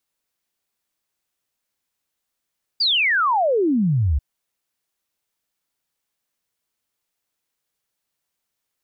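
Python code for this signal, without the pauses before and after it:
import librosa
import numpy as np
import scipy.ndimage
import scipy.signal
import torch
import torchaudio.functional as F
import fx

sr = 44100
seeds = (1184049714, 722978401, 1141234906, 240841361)

y = fx.ess(sr, length_s=1.39, from_hz=4900.0, to_hz=64.0, level_db=-15.5)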